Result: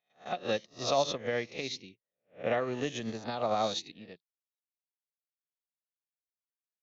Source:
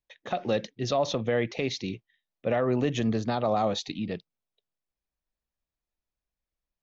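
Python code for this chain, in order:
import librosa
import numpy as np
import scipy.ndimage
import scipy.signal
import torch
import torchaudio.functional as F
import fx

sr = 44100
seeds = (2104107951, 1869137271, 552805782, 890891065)

y = fx.spec_swells(x, sr, rise_s=0.63)
y = fx.tilt_eq(y, sr, slope=1.5)
y = fx.upward_expand(y, sr, threshold_db=-47.0, expansion=2.5)
y = y * librosa.db_to_amplitude(-1.0)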